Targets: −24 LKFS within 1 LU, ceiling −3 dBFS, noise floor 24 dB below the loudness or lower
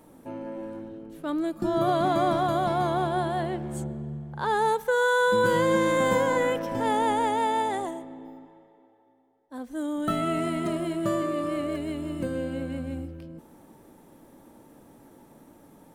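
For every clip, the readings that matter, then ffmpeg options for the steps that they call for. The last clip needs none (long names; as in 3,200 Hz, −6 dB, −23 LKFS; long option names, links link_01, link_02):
integrated loudness −26.5 LKFS; sample peak −11.0 dBFS; target loudness −24.0 LKFS
→ -af "volume=2.5dB"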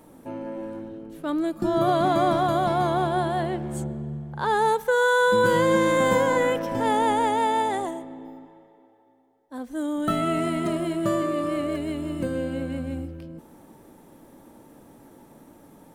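integrated loudness −24.0 LKFS; sample peak −8.5 dBFS; background noise floor −55 dBFS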